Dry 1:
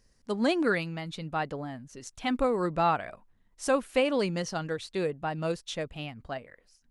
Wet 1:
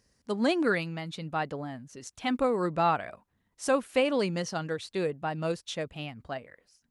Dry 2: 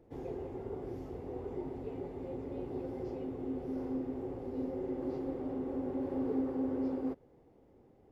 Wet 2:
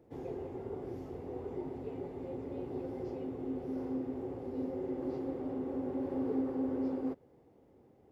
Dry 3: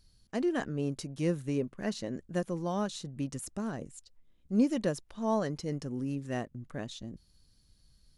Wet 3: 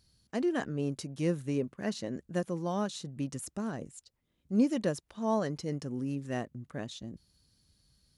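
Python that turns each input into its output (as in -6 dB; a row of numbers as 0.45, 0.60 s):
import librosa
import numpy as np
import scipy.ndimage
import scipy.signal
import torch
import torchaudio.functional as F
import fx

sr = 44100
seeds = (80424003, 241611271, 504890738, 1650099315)

y = scipy.signal.sosfilt(scipy.signal.butter(2, 66.0, 'highpass', fs=sr, output='sos'), x)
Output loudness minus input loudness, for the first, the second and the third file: 0.0, 0.0, 0.0 LU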